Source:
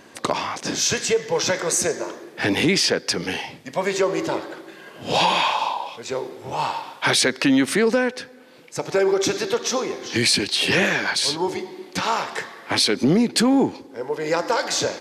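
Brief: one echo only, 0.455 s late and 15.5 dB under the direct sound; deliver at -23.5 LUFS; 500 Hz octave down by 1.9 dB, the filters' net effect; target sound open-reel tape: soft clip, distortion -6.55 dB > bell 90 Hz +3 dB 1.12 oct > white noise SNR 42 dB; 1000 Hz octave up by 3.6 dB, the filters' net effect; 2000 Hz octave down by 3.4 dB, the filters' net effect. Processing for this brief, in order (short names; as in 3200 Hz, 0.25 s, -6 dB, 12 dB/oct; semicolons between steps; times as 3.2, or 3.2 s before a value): bell 500 Hz -3.5 dB; bell 1000 Hz +6.5 dB; bell 2000 Hz -6.5 dB; echo 0.455 s -15.5 dB; soft clip -24.5 dBFS; bell 90 Hz +3 dB 1.12 oct; white noise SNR 42 dB; gain +5 dB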